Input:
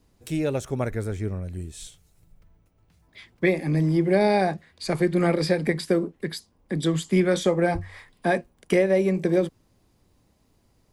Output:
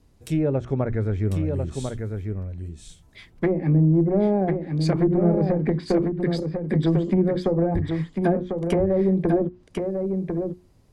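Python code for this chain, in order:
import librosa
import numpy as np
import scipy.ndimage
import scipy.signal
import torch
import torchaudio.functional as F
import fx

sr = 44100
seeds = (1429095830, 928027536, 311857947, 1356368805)

p1 = fx.clip_asym(x, sr, top_db=-17.5, bottom_db=-14.5)
p2 = fx.env_lowpass_down(p1, sr, base_hz=560.0, full_db=-18.5)
p3 = fx.low_shelf(p2, sr, hz=310.0, db=7.0)
p4 = fx.hum_notches(p3, sr, base_hz=60, count=6)
y = p4 + fx.echo_single(p4, sr, ms=1047, db=-5.5, dry=0)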